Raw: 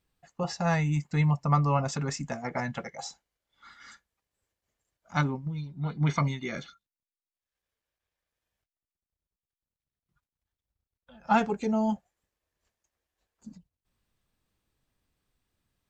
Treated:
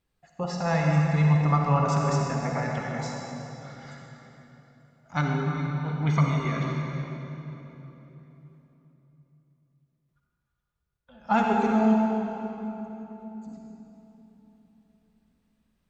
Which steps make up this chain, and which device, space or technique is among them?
swimming-pool hall (convolution reverb RT60 3.6 s, pre-delay 46 ms, DRR −1.5 dB; high-shelf EQ 4,300 Hz −5 dB)

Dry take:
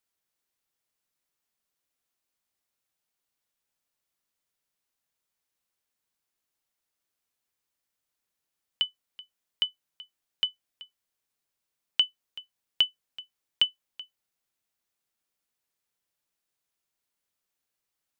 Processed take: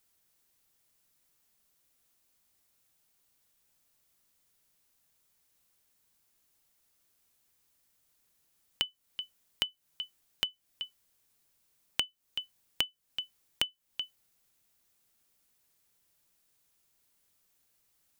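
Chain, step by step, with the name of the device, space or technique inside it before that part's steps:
ASMR close-microphone chain (low-shelf EQ 250 Hz +7.5 dB; downward compressor 5 to 1, threshold −38 dBFS, peak gain reduction 17.5 dB; high-shelf EQ 6,200 Hz +7 dB)
level +6.5 dB

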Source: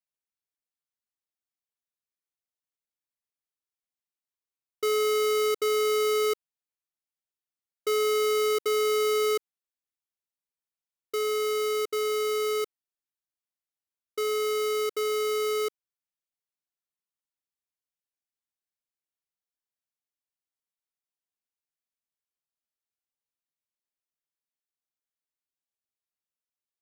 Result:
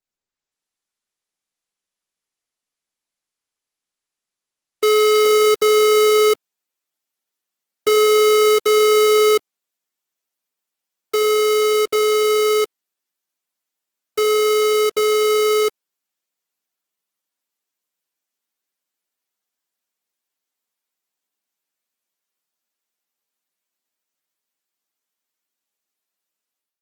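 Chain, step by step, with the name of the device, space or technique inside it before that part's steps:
video call (high-pass filter 180 Hz 24 dB per octave; automatic gain control gain up to 11 dB; Opus 16 kbit/s 48,000 Hz)

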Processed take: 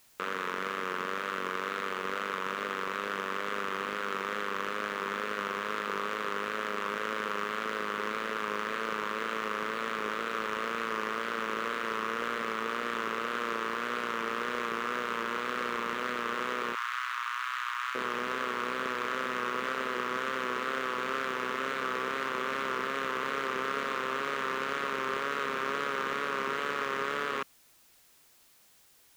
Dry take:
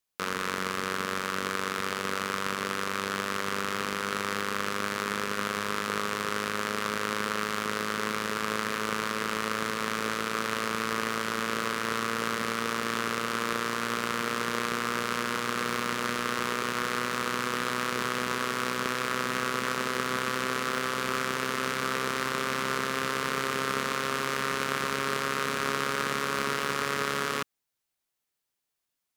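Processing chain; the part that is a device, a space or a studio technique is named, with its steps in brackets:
tape answering machine (band-pass filter 300–3,400 Hz; soft clipping −21 dBFS, distortion −15 dB; tape wow and flutter; white noise bed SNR 28 dB)
0:16.75–0:17.95: Butterworth high-pass 970 Hz 48 dB per octave

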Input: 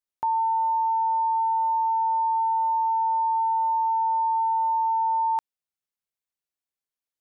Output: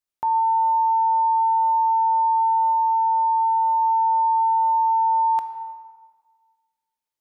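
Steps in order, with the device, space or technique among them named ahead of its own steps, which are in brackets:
compressed reverb return (on a send at −4.5 dB: convolution reverb RT60 1.4 s, pre-delay 15 ms + downward compressor, threshold −25 dBFS, peak gain reduction 5 dB)
0:02.72–0:03.82: on the sum: dynamic equaliser 640 Hz, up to −3 dB, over −38 dBFS, Q 3.1
level +1.5 dB

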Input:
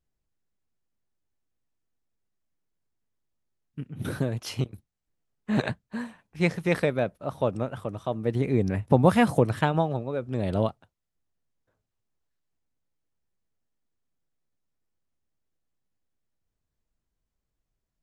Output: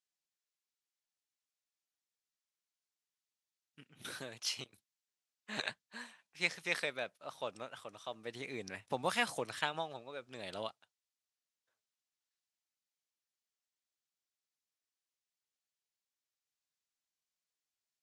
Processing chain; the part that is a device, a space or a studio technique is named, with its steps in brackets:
piezo pickup straight into a mixer (low-pass filter 5,600 Hz 12 dB per octave; first difference)
level +6.5 dB

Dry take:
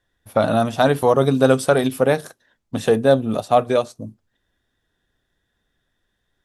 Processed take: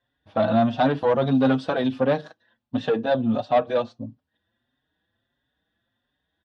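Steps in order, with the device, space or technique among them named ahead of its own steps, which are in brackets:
barber-pole flanger into a guitar amplifier (barber-pole flanger 5.2 ms +1.5 Hz; soft clipping −13 dBFS, distortion −14 dB; loudspeaker in its box 92–3,900 Hz, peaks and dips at 240 Hz +4 dB, 400 Hz −9 dB, 1,300 Hz −4 dB, 2,200 Hz −7 dB)
parametric band 170 Hz −5 dB 0.54 octaves
level +2 dB

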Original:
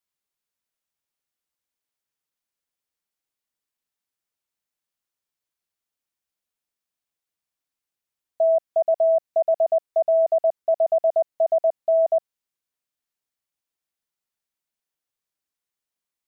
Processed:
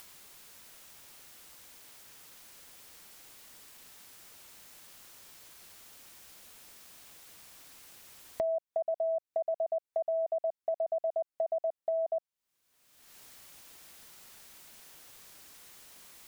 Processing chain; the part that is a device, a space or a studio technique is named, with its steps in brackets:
upward and downward compression (upward compression, threshold −32 dBFS; downward compressor 4 to 1, threshold −36 dBFS, peak gain reduction 15.5 dB)
level +3 dB

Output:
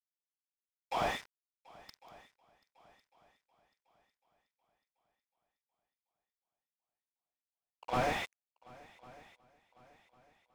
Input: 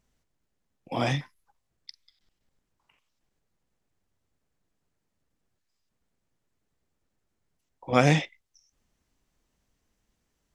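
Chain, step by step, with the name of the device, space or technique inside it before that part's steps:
high-pass filter 700 Hz 24 dB per octave
early transistor amplifier (dead-zone distortion −46.5 dBFS; slew-rate limiting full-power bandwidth 18 Hz)
echo machine with several playback heads 367 ms, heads second and third, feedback 42%, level −23.5 dB
level +5.5 dB

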